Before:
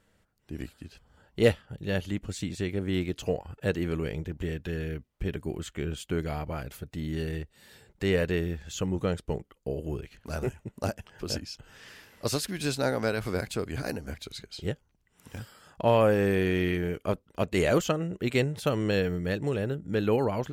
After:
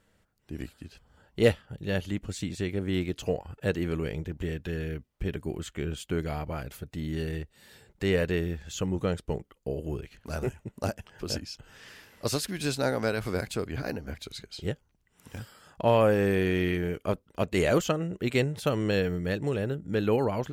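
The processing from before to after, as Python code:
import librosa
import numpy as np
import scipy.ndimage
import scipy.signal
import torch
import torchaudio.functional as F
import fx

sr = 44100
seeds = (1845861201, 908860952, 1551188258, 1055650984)

y = fx.peak_eq(x, sr, hz=8800.0, db=-13.5, octaves=0.81, at=(13.67, 14.15))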